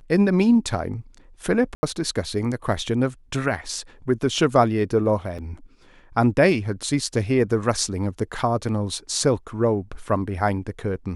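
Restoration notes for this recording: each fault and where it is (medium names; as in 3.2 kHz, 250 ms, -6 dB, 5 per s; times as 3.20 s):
1.75–1.83 s: dropout 80 ms
5.38–5.39 s: dropout 6.1 ms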